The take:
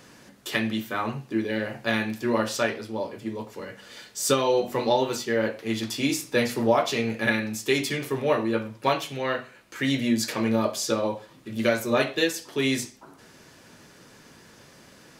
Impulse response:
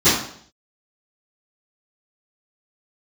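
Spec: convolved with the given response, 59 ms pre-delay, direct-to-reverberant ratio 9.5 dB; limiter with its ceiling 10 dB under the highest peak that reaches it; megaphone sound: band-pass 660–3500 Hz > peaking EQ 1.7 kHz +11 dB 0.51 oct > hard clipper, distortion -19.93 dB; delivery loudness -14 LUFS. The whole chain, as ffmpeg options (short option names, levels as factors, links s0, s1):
-filter_complex "[0:a]alimiter=limit=0.15:level=0:latency=1,asplit=2[s0][s1];[1:a]atrim=start_sample=2205,adelay=59[s2];[s1][s2]afir=irnorm=-1:irlink=0,volume=0.0251[s3];[s0][s3]amix=inputs=2:normalize=0,highpass=660,lowpass=3500,equalizer=f=1700:t=o:w=0.51:g=11,asoftclip=type=hard:threshold=0.133,volume=5.31"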